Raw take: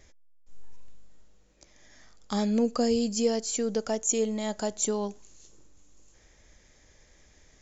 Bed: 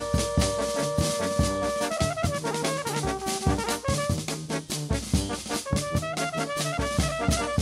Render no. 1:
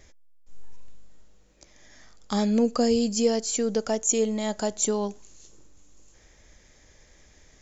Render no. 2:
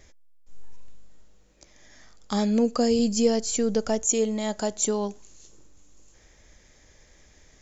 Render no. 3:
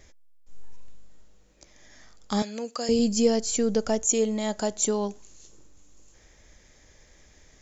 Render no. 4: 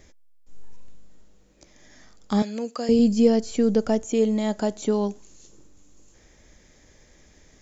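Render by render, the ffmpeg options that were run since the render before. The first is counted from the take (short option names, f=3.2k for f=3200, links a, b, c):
-af "volume=3dB"
-filter_complex "[0:a]asettb=1/sr,asplit=3[a][b][c];[a]atrim=end=2.994[d];[b]atrim=start=2.99:end=4.05,asetpts=PTS-STARTPTS,afade=t=in:d=0.004:c=qsin,afade=t=out:st=1.056:d=0.004:c=qsin,lowshelf=f=130:g=10[e];[c]atrim=start=4.046[f];[d][e]acrossfade=d=0.004:c1=hsin:c2=qsin[g];[g][f]acrossfade=d=0.004:c1=qsin:c2=hsin"
-filter_complex "[0:a]asettb=1/sr,asplit=3[a][b][c];[a]atrim=end=2.424[d];[b]atrim=start=2.42:end=2.89,asetpts=PTS-STARTPTS,afade=t=in:d=0.004:c=qsin,afade=t=out:st=0.466:d=0.004:c=qsin,highpass=f=1.3k:p=1[e];[c]atrim=start=2.886[f];[d][e]acrossfade=d=0.004:c1=hsin:c2=qsin[g];[g][f]acrossfade=d=0.004:c1=qsin:c2=hsin"
-filter_complex "[0:a]acrossover=split=4000[a][b];[b]acompressor=threshold=-43dB:ratio=4:attack=1:release=60[c];[a][c]amix=inputs=2:normalize=0,equalizer=f=240:t=o:w=1.9:g=5.5"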